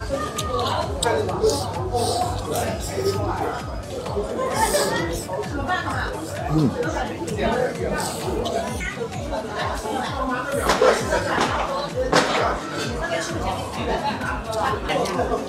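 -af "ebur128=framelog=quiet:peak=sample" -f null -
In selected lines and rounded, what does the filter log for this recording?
Integrated loudness:
  I:         -23.5 LUFS
  Threshold: -33.5 LUFS
Loudness range:
  LRA:         3.6 LU
  Threshold: -43.5 LUFS
  LRA low:   -25.0 LUFS
  LRA high:  -21.4 LUFS
Sample peak:
  Peak:       -2.8 dBFS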